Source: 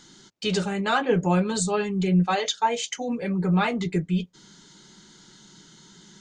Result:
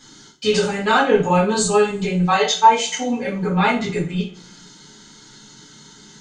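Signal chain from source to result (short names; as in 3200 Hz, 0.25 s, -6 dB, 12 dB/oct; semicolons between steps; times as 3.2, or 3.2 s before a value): two-slope reverb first 0.36 s, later 1.9 s, from -28 dB, DRR -8.5 dB; gain -2 dB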